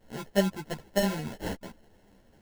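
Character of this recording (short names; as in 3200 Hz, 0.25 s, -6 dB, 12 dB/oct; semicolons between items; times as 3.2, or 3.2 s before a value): aliases and images of a low sample rate 1200 Hz, jitter 0%; a shimmering, thickened sound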